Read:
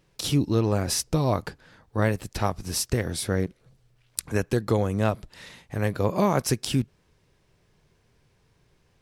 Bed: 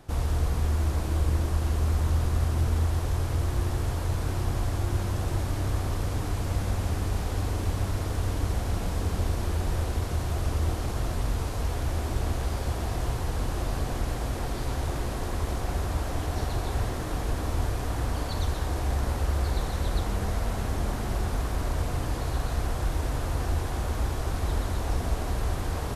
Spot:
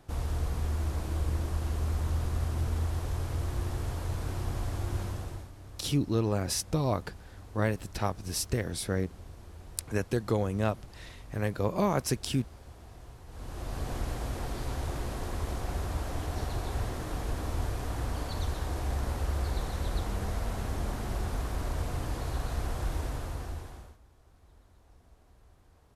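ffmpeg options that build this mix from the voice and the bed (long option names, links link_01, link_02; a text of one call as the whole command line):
ffmpeg -i stem1.wav -i stem2.wav -filter_complex "[0:a]adelay=5600,volume=-5dB[link_01];[1:a]volume=10dB,afade=type=out:start_time=5.02:duration=0.49:silence=0.188365,afade=type=in:start_time=13.27:duration=0.66:silence=0.16788,afade=type=out:start_time=22.96:duration=1.02:silence=0.0446684[link_02];[link_01][link_02]amix=inputs=2:normalize=0" out.wav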